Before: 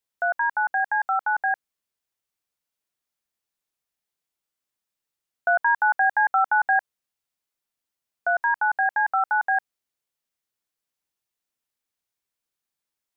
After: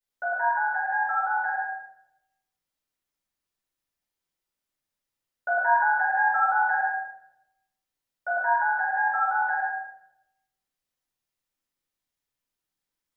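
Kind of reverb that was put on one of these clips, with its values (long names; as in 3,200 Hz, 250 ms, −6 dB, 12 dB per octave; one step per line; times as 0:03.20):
rectangular room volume 250 cubic metres, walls mixed, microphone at 7 metres
level −15.5 dB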